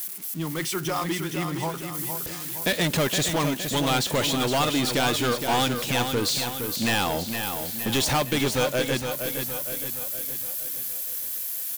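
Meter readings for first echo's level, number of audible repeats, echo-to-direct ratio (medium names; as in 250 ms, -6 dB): -7.0 dB, 5, -5.5 dB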